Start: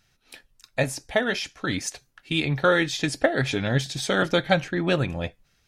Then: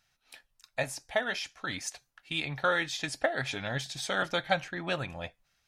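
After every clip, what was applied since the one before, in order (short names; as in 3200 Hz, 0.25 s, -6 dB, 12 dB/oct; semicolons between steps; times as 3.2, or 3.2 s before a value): resonant low shelf 540 Hz -6.5 dB, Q 1.5; gain -6 dB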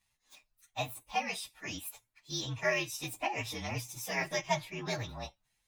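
inharmonic rescaling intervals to 118%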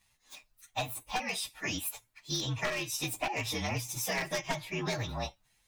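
one-sided fold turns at -28.5 dBFS; compressor 10:1, threshold -37 dBFS, peak gain reduction 11.5 dB; gain +7.5 dB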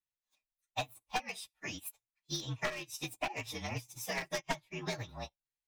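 upward expander 2.5:1, over -49 dBFS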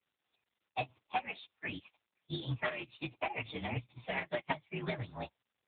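gain +3 dB; AMR-NB 7.95 kbps 8000 Hz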